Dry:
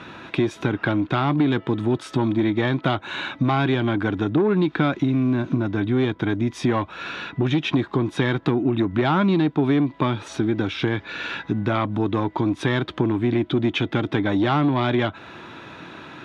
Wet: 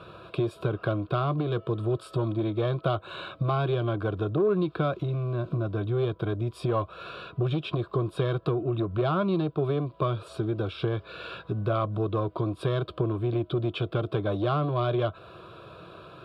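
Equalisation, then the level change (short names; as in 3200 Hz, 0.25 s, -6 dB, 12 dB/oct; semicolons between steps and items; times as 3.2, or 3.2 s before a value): band shelf 2300 Hz -9.5 dB; fixed phaser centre 1300 Hz, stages 8; 0.0 dB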